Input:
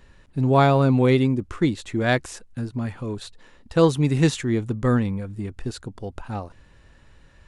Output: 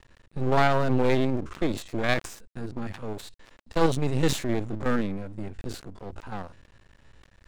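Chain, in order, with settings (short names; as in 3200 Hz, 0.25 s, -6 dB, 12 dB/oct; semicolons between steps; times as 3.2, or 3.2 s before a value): stepped spectrum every 50 ms; steep low-pass 9700 Hz 36 dB/oct; half-wave rectifier; sustainer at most 130 dB/s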